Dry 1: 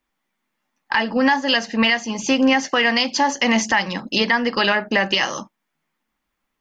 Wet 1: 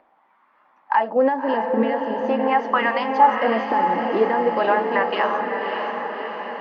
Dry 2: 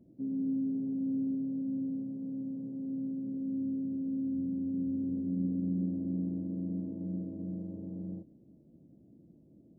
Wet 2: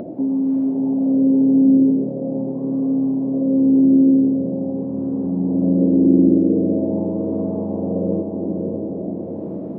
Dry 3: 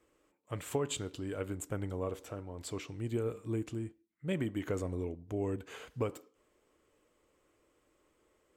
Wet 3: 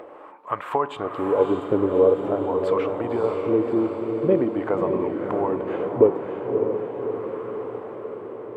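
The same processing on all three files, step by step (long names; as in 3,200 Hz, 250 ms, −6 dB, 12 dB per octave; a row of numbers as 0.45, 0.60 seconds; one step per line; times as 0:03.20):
LFO wah 0.44 Hz 370–1,100 Hz, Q 2.8
in parallel at −2 dB: upward compression, threshold −39 dBFS
on the sum: parametric band 6,700 Hz −14 dB 1.3 octaves
feedback delay with all-pass diffusion 602 ms, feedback 62%, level −4.5 dB
normalise the peak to −3 dBFS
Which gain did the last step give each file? +2.0, +25.5, +17.0 decibels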